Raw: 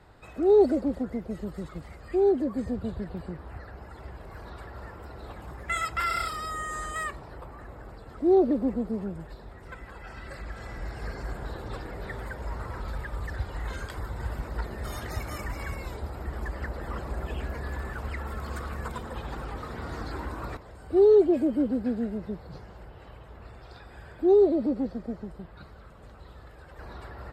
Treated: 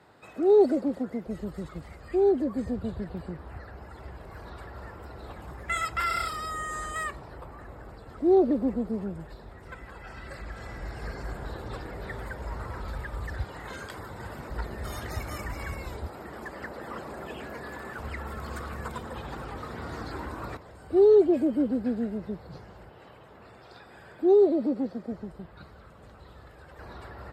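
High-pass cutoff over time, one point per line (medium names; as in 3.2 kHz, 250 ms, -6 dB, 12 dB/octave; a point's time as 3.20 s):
150 Hz
from 1.27 s 42 Hz
from 13.44 s 130 Hz
from 14.50 s 47 Hz
from 16.08 s 180 Hz
from 17.99 s 73 Hz
from 22.89 s 150 Hz
from 25.12 s 64 Hz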